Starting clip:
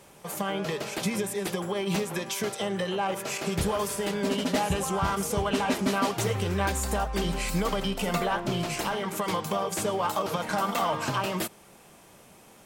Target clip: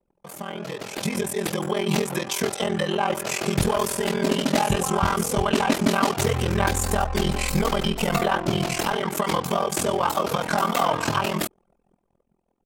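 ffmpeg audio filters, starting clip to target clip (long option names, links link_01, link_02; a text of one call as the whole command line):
ffmpeg -i in.wav -af "aeval=exprs='val(0)*sin(2*PI*21*n/s)':channel_layout=same,anlmdn=0.01,dynaudnorm=framelen=120:gausssize=17:maxgain=9.5dB,volume=-1.5dB" out.wav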